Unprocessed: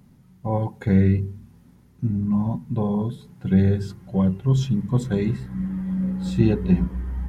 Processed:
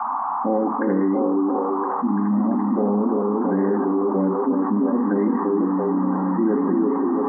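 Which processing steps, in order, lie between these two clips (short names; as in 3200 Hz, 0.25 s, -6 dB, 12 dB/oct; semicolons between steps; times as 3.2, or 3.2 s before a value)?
Wiener smoothing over 9 samples; expander -44 dBFS; bell 280 Hz +14 dB 0.23 oct; limiter -11.5 dBFS, peak gain reduction 7 dB; brick-wall FIR band-pass 200–2100 Hz; notch comb 1000 Hz; band noise 760–1200 Hz -42 dBFS; delay with a stepping band-pass 0.339 s, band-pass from 340 Hz, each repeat 0.7 oct, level -1 dB; fast leveller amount 70%; gain +2 dB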